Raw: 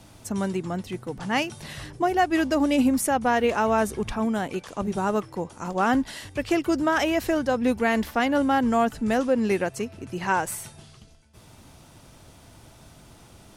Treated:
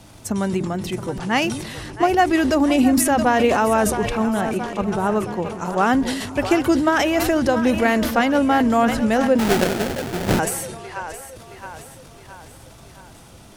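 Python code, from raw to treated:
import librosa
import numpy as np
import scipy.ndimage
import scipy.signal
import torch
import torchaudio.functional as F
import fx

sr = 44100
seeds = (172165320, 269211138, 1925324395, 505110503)

y = fx.high_shelf(x, sr, hz=3700.0, db=-10.0, at=(4.41, 5.61))
y = fx.echo_split(y, sr, split_hz=390.0, low_ms=182, high_ms=670, feedback_pct=52, wet_db=-12)
y = fx.sample_hold(y, sr, seeds[0], rate_hz=1100.0, jitter_pct=20, at=(9.38, 10.38), fade=0.02)
y = fx.transient(y, sr, attack_db=3, sustain_db=8)
y = F.gain(torch.from_numpy(y), 3.5).numpy()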